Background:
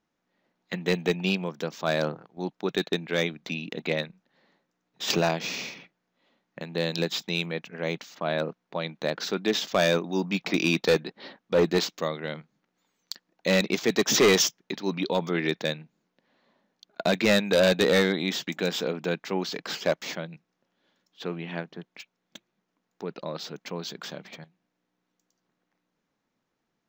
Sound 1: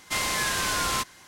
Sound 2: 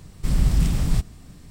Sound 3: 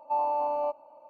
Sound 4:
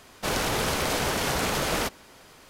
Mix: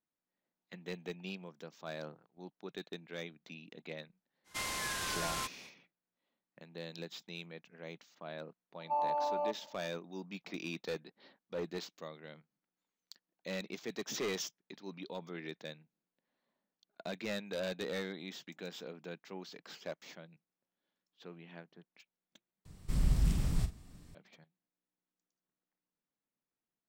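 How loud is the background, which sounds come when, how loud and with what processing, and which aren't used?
background -17.5 dB
4.44 add 1 -11 dB, fades 0.05 s
8.8 add 3 -5.5 dB
22.65 replace with 2 -11 dB + doubler 44 ms -10.5 dB
not used: 4

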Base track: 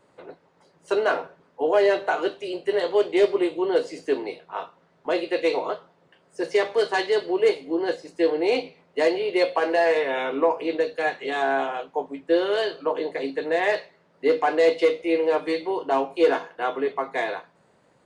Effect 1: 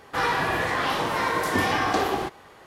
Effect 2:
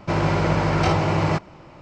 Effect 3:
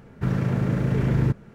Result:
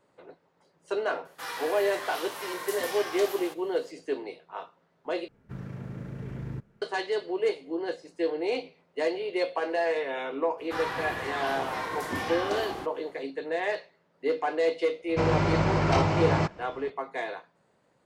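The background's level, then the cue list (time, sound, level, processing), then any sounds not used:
base track -7 dB
1.25 add 1 -14 dB + RIAA curve recording
5.28 replace with 3 -15.5 dB
10.57 add 1 -9 dB, fades 0.02 s
15.09 add 2 -4.5 dB

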